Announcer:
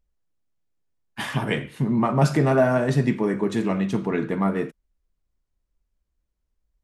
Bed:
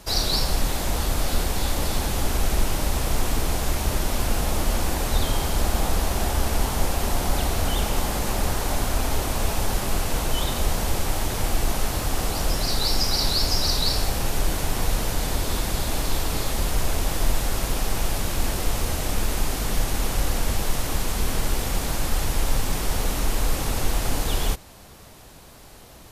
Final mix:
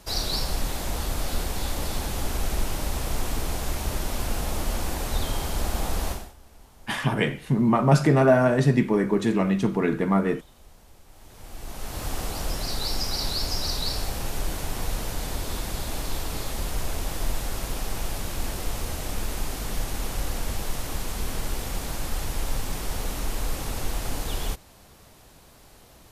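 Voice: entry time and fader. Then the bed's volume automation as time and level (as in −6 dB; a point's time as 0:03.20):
5.70 s, +1.0 dB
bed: 0:06.11 −4.5 dB
0:06.36 −28.5 dB
0:11.05 −28.5 dB
0:12.05 −5.5 dB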